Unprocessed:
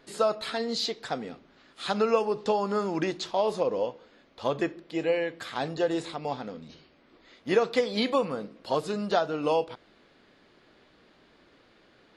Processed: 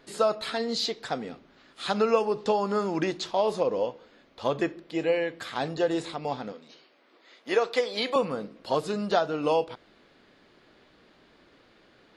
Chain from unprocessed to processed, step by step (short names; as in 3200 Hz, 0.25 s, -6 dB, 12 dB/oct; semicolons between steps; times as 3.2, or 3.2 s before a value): 6.52–8.16 HPF 400 Hz 12 dB/oct; gain +1 dB